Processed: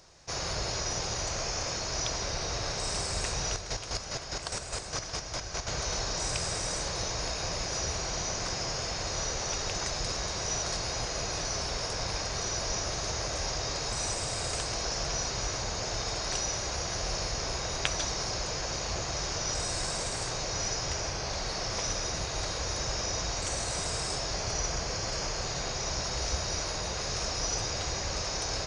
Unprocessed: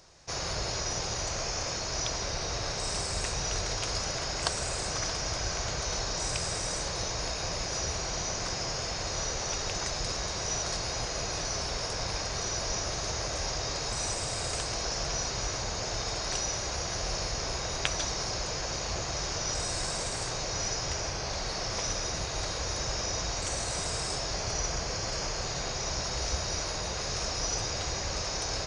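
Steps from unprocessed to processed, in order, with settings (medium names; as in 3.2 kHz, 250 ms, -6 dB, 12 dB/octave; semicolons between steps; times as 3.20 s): 3.50–5.67 s: square tremolo 4.9 Hz, depth 60%, duty 30%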